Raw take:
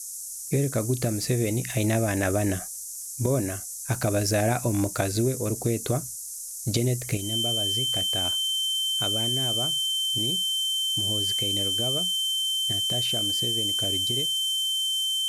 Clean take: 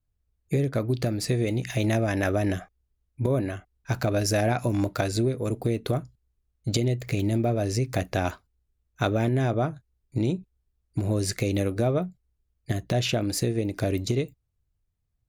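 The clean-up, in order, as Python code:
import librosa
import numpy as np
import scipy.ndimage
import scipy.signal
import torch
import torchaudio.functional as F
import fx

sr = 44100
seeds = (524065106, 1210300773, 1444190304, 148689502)

y = fx.fix_declick_ar(x, sr, threshold=6.5)
y = fx.notch(y, sr, hz=3100.0, q=30.0)
y = fx.noise_reduce(y, sr, print_start_s=2.68, print_end_s=3.18, reduce_db=30.0)
y = fx.gain(y, sr, db=fx.steps((0.0, 0.0), (7.17, 8.5)))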